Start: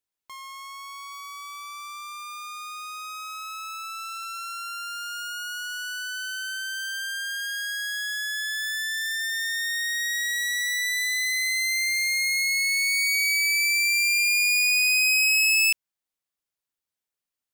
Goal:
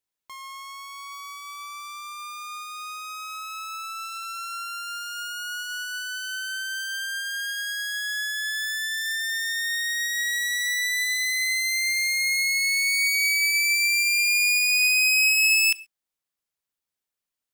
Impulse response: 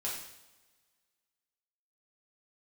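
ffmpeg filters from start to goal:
-filter_complex "[0:a]asplit=2[s0][s1];[1:a]atrim=start_sample=2205,atrim=end_sample=6174[s2];[s1][s2]afir=irnorm=-1:irlink=0,volume=0.112[s3];[s0][s3]amix=inputs=2:normalize=0"

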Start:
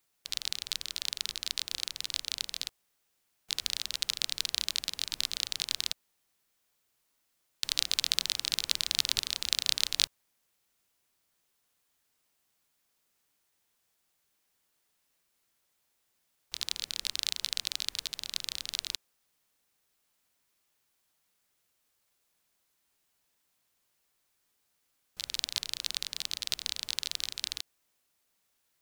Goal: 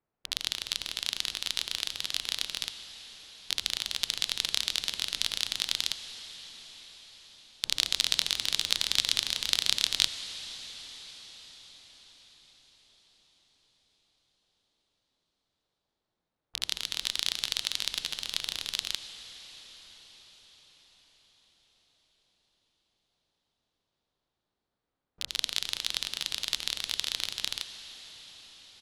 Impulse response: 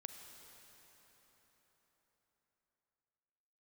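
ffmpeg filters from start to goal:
-filter_complex "[0:a]asetrate=42845,aresample=44100,atempo=1.0293,adynamicsmooth=sensitivity=7.5:basefreq=1100,asplit=2[s0][s1];[1:a]atrim=start_sample=2205,asetrate=23373,aresample=44100[s2];[s1][s2]afir=irnorm=-1:irlink=0,volume=1.12[s3];[s0][s3]amix=inputs=2:normalize=0,volume=0.75"

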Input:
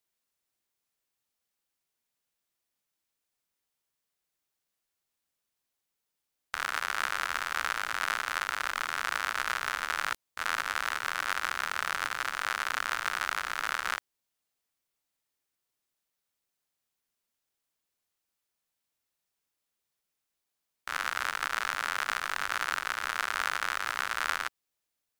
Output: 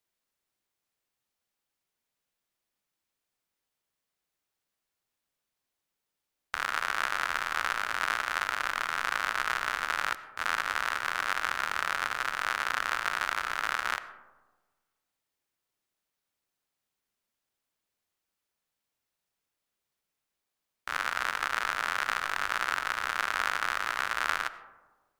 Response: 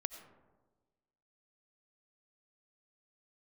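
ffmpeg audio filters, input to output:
-filter_complex "[0:a]asplit=2[s0][s1];[1:a]atrim=start_sample=2205,highshelf=f=5800:g=-12[s2];[s1][s2]afir=irnorm=-1:irlink=0,volume=1.58[s3];[s0][s3]amix=inputs=2:normalize=0,volume=0.531"

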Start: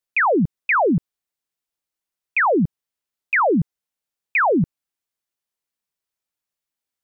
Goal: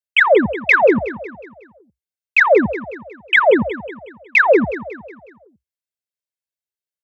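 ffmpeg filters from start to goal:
-af "acontrast=75,equalizer=f=1000:w=3.7:g=-12,afreqshift=62,bandreject=f=480:w=12,aecho=1:1:1.9:0.61,afwtdn=0.0708,aecho=1:1:183|366|549|732|915:0.211|0.0993|0.0467|0.0219|0.0103"

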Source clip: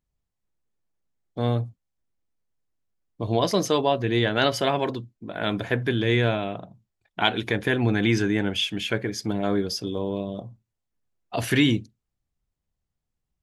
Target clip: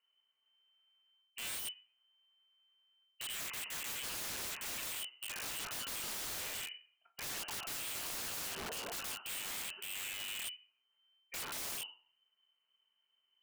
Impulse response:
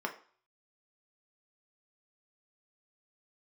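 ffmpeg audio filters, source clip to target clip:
-filter_complex "[0:a]areverse,acompressor=threshold=0.0178:ratio=4,areverse,aeval=exprs='0.075*(cos(1*acos(clip(val(0)/0.075,-1,1)))-cos(1*PI/2))+0.000668*(cos(4*acos(clip(val(0)/0.075,-1,1)))-cos(4*PI/2))':c=same,lowpass=f=2600:t=q:w=0.5098,lowpass=f=2600:t=q:w=0.6013,lowpass=f=2600:t=q:w=0.9,lowpass=f=2600:t=q:w=2.563,afreqshift=-3100[s0];[1:a]atrim=start_sample=2205[s1];[s0][s1]afir=irnorm=-1:irlink=0,aeval=exprs='(mod(75*val(0)+1,2)-1)/75':c=same,volume=1.12"

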